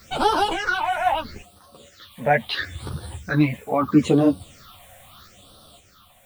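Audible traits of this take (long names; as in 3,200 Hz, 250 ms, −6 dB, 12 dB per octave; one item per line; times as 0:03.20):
a quantiser's noise floor 10 bits, dither triangular
phaser sweep stages 6, 0.76 Hz, lowest notch 320–2,100 Hz
sample-and-hold tremolo 1.9 Hz
a shimmering, thickened sound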